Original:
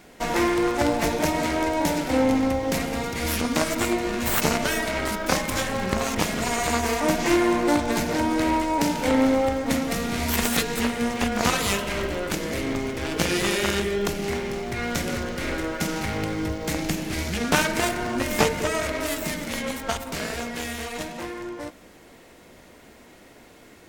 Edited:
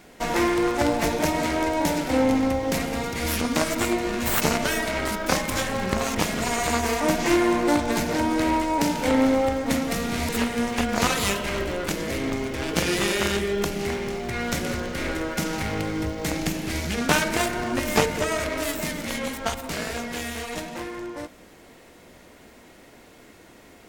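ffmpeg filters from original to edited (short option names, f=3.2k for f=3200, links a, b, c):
-filter_complex "[0:a]asplit=2[a][b];[a]atrim=end=10.292[c];[b]atrim=start=10.718[d];[c][d]acrossfade=d=0.004:c1=hsin:c2=hsin"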